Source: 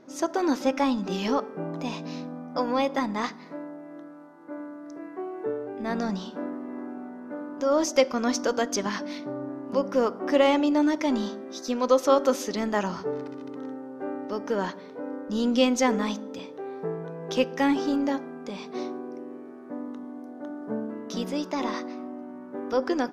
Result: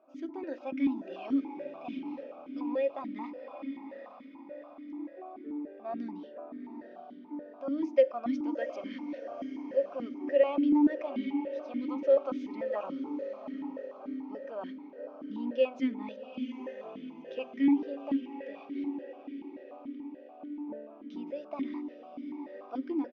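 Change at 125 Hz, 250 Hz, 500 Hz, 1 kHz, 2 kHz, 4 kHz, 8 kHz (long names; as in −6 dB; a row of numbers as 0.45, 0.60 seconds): below −15 dB, −4.5 dB, −6.0 dB, −12.5 dB, −13.0 dB, −18.0 dB, below −35 dB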